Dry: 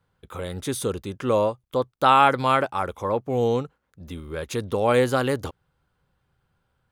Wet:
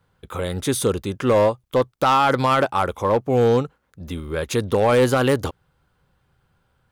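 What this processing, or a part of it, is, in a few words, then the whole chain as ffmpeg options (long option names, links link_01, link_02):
limiter into clipper: -af "alimiter=limit=-12.5dB:level=0:latency=1:release=12,asoftclip=type=hard:threshold=-17dB,volume=6dB"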